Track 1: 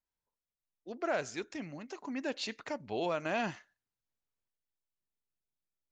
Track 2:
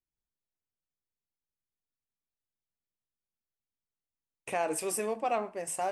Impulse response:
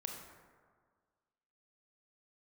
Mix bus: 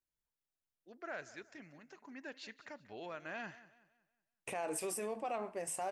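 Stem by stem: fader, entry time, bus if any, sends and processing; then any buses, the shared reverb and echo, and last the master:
-13.5 dB, 0.00 s, no send, echo send -17.5 dB, bell 1700 Hz +8.5 dB 0.76 oct
-2.5 dB, 0.00 s, no send, no echo send, dry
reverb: off
echo: feedback echo 0.186 s, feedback 37%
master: limiter -30.5 dBFS, peak gain reduction 8 dB

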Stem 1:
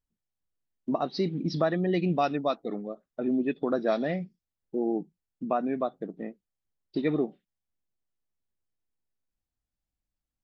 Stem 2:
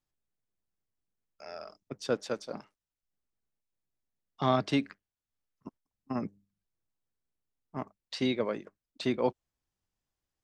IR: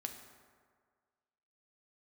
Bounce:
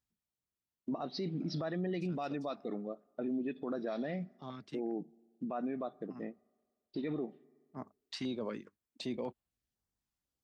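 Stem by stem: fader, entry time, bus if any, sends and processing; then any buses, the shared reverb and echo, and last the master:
-5.0 dB, 0.00 s, send -21.5 dB, dry
-4.0 dB, 0.00 s, no send, bell 230 Hz +5 dB 0.29 oct; stepped notch 4 Hz 490–5600 Hz; auto duck -14 dB, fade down 1.75 s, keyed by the first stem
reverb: on, RT60 1.8 s, pre-delay 4 ms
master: HPF 44 Hz; limiter -29 dBFS, peak gain reduction 11 dB

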